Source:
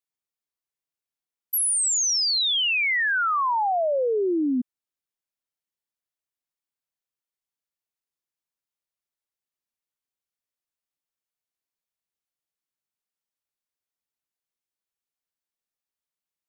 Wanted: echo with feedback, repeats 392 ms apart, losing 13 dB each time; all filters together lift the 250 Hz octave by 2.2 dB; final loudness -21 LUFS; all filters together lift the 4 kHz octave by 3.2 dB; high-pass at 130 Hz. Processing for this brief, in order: high-pass 130 Hz; peaking EQ 250 Hz +3 dB; peaking EQ 4 kHz +4 dB; feedback delay 392 ms, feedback 22%, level -13 dB; trim -1.5 dB

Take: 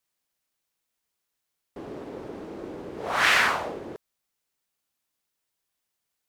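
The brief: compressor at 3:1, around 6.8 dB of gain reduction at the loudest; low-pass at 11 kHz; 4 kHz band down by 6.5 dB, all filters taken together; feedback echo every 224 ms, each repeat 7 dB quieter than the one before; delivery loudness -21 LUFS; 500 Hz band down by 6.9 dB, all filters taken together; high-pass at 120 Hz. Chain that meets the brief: high-pass 120 Hz; low-pass 11 kHz; peaking EQ 500 Hz -9 dB; peaking EQ 4 kHz -9 dB; compression 3:1, threshold -28 dBFS; feedback delay 224 ms, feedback 45%, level -7 dB; trim +13 dB

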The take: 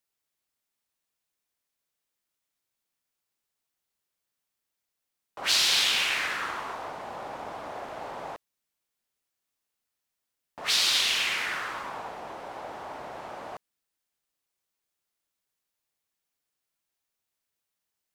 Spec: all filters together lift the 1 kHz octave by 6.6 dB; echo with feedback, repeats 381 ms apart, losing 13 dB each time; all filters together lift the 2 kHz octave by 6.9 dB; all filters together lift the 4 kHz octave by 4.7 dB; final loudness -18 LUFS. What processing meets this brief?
peaking EQ 1 kHz +6.5 dB; peaking EQ 2 kHz +6 dB; peaking EQ 4 kHz +3.5 dB; feedback delay 381 ms, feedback 22%, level -13 dB; trim +3 dB

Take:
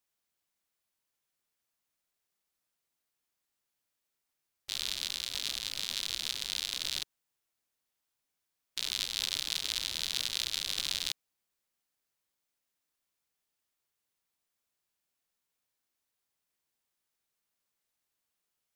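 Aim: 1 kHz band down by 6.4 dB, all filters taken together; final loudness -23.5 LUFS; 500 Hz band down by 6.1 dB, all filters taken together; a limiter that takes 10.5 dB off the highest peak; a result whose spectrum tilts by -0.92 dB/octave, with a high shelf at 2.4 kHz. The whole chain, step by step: peaking EQ 500 Hz -6 dB; peaking EQ 1 kHz -5.5 dB; treble shelf 2.4 kHz -7 dB; trim +21.5 dB; peak limiter -6 dBFS

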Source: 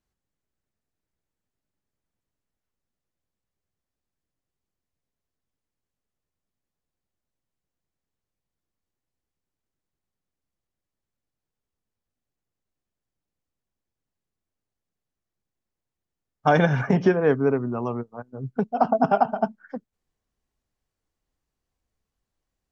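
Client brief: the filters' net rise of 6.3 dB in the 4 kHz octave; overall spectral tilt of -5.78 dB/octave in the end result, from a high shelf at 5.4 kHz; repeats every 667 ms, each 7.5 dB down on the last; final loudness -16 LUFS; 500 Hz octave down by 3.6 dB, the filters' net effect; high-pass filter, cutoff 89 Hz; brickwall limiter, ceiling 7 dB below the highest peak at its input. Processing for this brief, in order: high-pass 89 Hz; peaking EQ 500 Hz -5 dB; peaking EQ 4 kHz +5.5 dB; treble shelf 5.4 kHz +7.5 dB; peak limiter -14.5 dBFS; feedback delay 667 ms, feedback 42%, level -7.5 dB; trim +11.5 dB

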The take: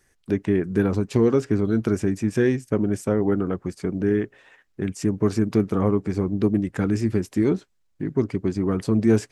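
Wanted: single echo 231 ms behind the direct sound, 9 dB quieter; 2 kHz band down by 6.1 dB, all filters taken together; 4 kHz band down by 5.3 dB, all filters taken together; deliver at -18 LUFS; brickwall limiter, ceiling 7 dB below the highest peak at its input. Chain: peaking EQ 2 kHz -7 dB; peaking EQ 4 kHz -5.5 dB; peak limiter -13.5 dBFS; delay 231 ms -9 dB; trim +7.5 dB

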